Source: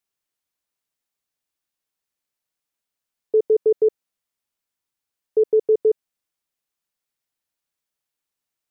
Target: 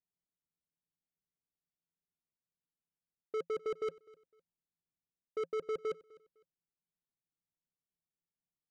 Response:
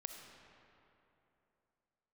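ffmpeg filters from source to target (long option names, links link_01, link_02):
-af "equalizer=frequency=170:width_type=o:width=0.27:gain=12,bandreject=frequency=540:width=12,areverse,acompressor=threshold=-23dB:ratio=6,areverse,asoftclip=type=hard:threshold=-27.5dB,adynamicsmooth=sensitivity=7.5:basefreq=570,aecho=1:1:254|508:0.0708|0.0198,volume=-5dB"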